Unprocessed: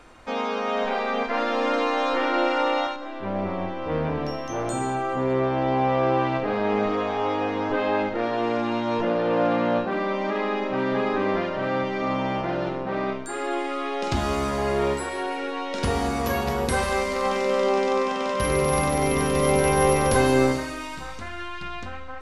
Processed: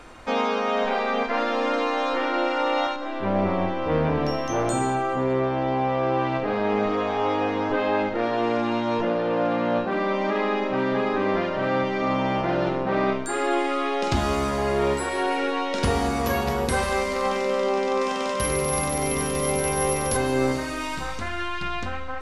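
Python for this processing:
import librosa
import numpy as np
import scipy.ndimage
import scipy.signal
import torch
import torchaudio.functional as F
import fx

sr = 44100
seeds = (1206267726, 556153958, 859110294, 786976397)

y = fx.high_shelf(x, sr, hz=5800.0, db=9.5, at=(18.01, 20.17))
y = fx.rider(y, sr, range_db=5, speed_s=0.5)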